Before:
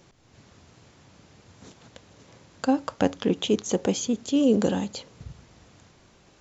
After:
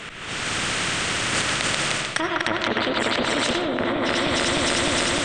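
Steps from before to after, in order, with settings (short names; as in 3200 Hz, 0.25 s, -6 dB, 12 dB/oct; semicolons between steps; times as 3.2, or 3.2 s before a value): regenerating reverse delay 0.186 s, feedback 76%, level -3.5 dB; treble ducked by the level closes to 770 Hz, closed at -15.5 dBFS; band shelf 1700 Hz +14 dB; reverse; compressor 6:1, threshold -33 dBFS, peak gain reduction 18.5 dB; reverse; limiter -27.5 dBFS, peak gain reduction 7 dB; AGC gain up to 15 dB; varispeed +22%; on a send at -9 dB: reverb RT60 0.45 s, pre-delay 45 ms; on the sum: spectral compressor 2:1; gain +5.5 dB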